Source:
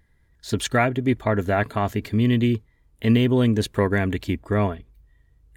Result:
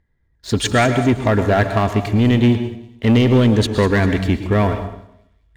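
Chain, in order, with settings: LPF 8100 Hz 12 dB/oct; sample leveller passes 2; on a send: thin delay 0.199 s, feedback 47%, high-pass 4900 Hz, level -10 dB; on the sum: plate-style reverb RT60 0.74 s, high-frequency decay 0.85×, pre-delay 0.1 s, DRR 8 dB; mismatched tape noise reduction decoder only

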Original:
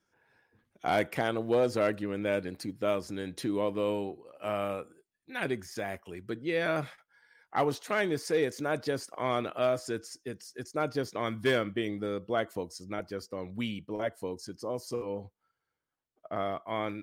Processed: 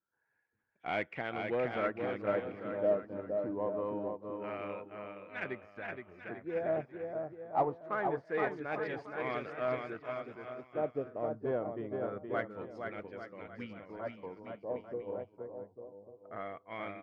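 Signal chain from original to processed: LFO low-pass sine 0.25 Hz 640–2500 Hz; bouncing-ball echo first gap 0.47 s, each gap 0.8×, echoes 5; in parallel at -10.5 dB: soft clip -21.5 dBFS, distortion -13 dB; on the sum: upward expander 1.5:1, over -43 dBFS; gain -7.5 dB

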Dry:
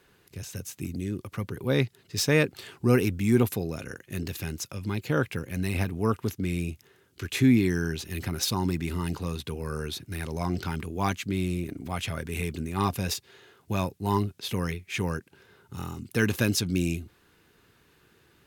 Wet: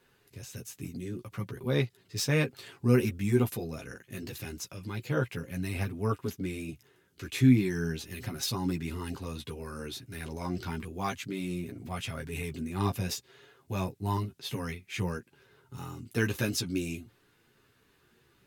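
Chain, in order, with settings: chorus voices 6, 0.31 Hz, delay 12 ms, depth 4.9 ms; gain -1.5 dB

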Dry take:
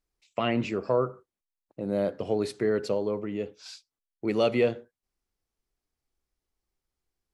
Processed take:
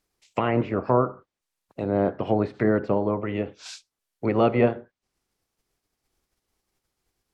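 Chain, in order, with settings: spectral limiter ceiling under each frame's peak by 13 dB; treble ducked by the level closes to 1300 Hz, closed at -26 dBFS; gain +5 dB

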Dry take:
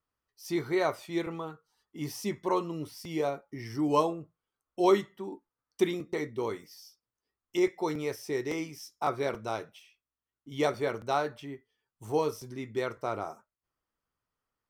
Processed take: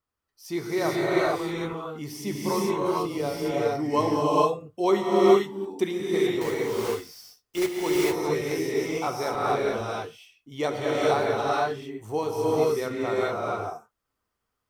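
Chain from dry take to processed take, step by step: 6.41–7.79 block floating point 3-bit; non-linear reverb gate 0.48 s rising, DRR -5.5 dB

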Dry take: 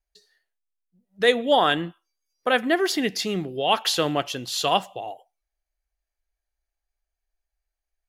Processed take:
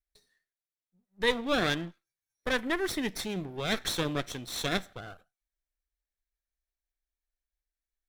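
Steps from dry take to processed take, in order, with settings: minimum comb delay 0.53 ms; gain -7 dB

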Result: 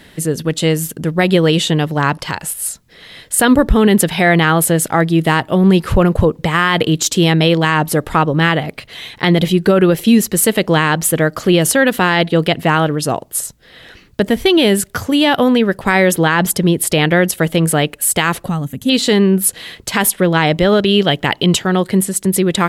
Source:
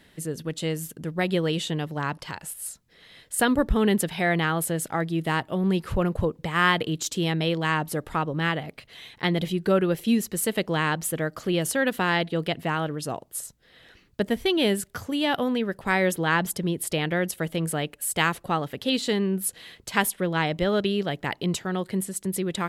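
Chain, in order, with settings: 18.49–18.89 spectral gain 280–5900 Hz -15 dB; 20.88–21.62 bell 3100 Hz +7.5 dB 0.32 oct; maximiser +14.5 dB; gain -1 dB

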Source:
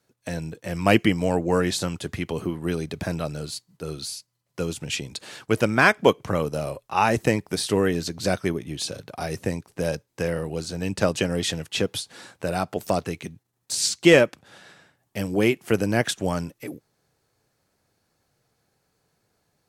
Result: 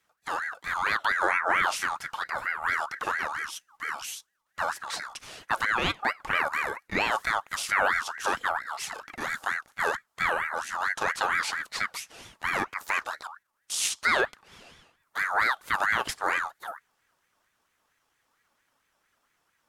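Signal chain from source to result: harmonic-percussive split harmonic +7 dB; limiter -7.5 dBFS, peak gain reduction 9.5 dB; ring modulator with a swept carrier 1400 Hz, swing 30%, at 4.4 Hz; gain -4 dB

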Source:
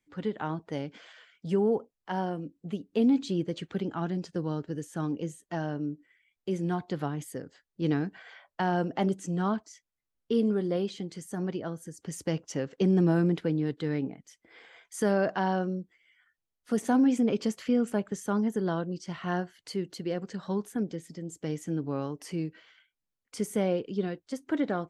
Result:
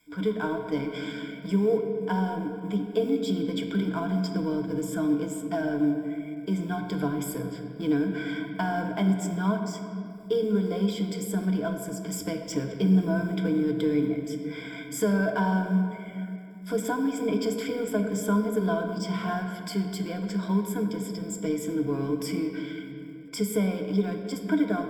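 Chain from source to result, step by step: G.711 law mismatch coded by mu; notches 60/120/180/240 Hz; compressor 2:1, threshold -30 dBFS, peak gain reduction 6.5 dB; ripple EQ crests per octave 1.7, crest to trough 18 dB; on a send: reverb RT60 2.5 s, pre-delay 3 ms, DRR 4.5 dB

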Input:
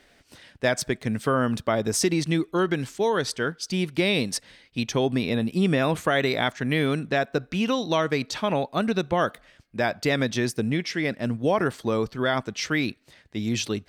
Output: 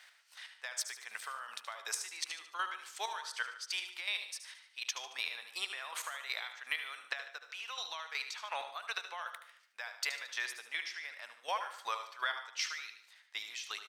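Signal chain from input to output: HPF 970 Hz 24 dB/oct; compressor, threshold -33 dBFS, peak gain reduction 11.5 dB; chopper 2.7 Hz, depth 65%, duty 25%; feedback echo 74 ms, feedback 47%, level -11 dB; on a send at -12.5 dB: reverb, pre-delay 68 ms; on the sum: gain +1.5 dB

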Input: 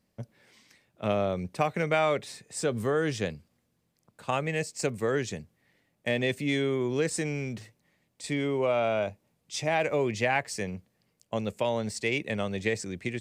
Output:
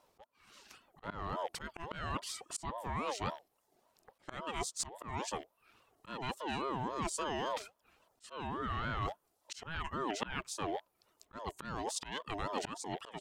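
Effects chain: rattling part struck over -43 dBFS, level -37 dBFS; reverb removal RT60 0.5 s; in parallel at -1.5 dB: limiter -20 dBFS, peak gain reduction 7 dB; on the sum: auto swell 0.509 s; reverse; compressor 16:1, threshold -32 dBFS, peak gain reduction 14 dB; reverse; ring modulator with a swept carrier 660 Hz, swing 25%, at 3.6 Hz; gain +1.5 dB

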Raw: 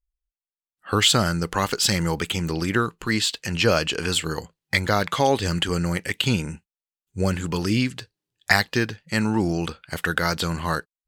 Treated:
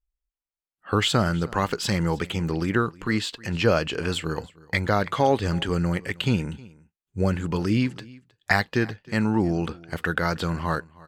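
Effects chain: high shelf 3100 Hz -12 dB; echo 0.314 s -22.5 dB

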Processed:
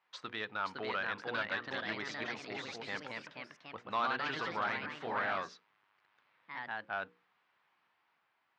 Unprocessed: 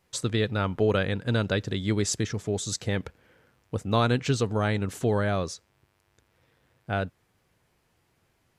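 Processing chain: resonant low shelf 680 Hz -10.5 dB, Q 1.5; notches 60/120/180/240/300/360/420/480 Hz; in parallel at -2 dB: limiter -22 dBFS, peak gain reduction 9 dB; on the sum: hard clip -14 dBFS, distortion -28 dB; echoes that change speed 0.538 s, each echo +2 st, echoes 3; BPF 280–5300 Hz; air absorption 240 m; core saturation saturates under 970 Hz; gain -7.5 dB

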